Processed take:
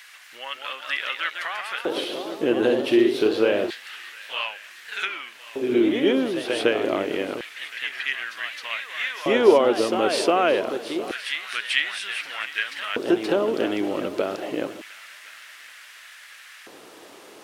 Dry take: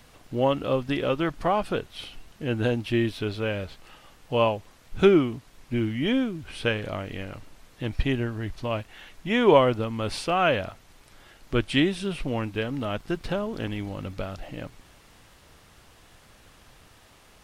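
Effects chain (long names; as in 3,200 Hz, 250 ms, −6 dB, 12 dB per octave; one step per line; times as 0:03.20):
high-pass filter 55 Hz
downward compressor 2.5 to 1, threshold −30 dBFS, peak gain reduction 12 dB
delay with pitch and tempo change per echo 218 ms, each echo +1 semitone, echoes 3, each echo −6 dB
echo machine with several playback heads 355 ms, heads second and third, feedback 47%, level −17 dB
auto-filter high-pass square 0.27 Hz 360–1,800 Hz
level +7.5 dB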